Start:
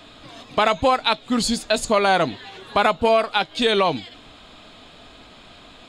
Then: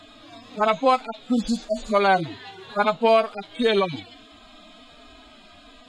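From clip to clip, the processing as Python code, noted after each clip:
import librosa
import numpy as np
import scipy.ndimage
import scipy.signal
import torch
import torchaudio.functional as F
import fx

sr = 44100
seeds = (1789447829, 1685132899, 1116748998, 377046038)

y = fx.hpss_only(x, sr, part='harmonic')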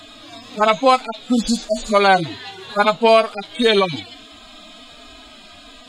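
y = fx.high_shelf(x, sr, hz=3500.0, db=8.5)
y = y * librosa.db_to_amplitude(4.5)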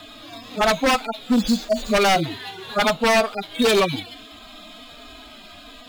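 y = scipy.signal.medfilt(x, 5)
y = 10.0 ** (-11.5 / 20.0) * (np.abs((y / 10.0 ** (-11.5 / 20.0) + 3.0) % 4.0 - 2.0) - 1.0)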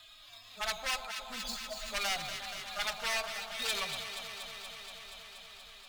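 y = fx.tone_stack(x, sr, knobs='10-0-10')
y = fx.echo_alternate(y, sr, ms=119, hz=1100.0, feedback_pct=89, wet_db=-7.5)
y = y * librosa.db_to_amplitude(-9.0)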